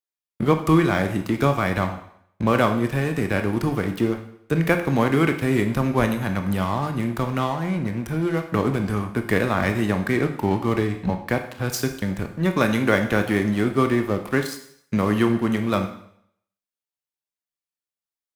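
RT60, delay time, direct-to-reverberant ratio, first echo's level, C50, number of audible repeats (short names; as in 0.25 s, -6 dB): 0.65 s, none, 6.0 dB, none, 9.5 dB, none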